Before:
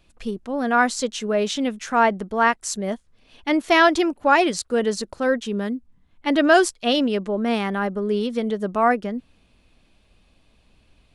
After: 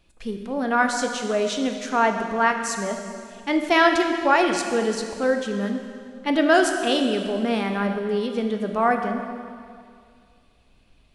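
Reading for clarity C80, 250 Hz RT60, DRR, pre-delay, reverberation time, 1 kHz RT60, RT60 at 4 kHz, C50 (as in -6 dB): 6.5 dB, 2.2 s, 4.0 dB, 7 ms, 2.2 s, 2.2 s, 2.1 s, 6.0 dB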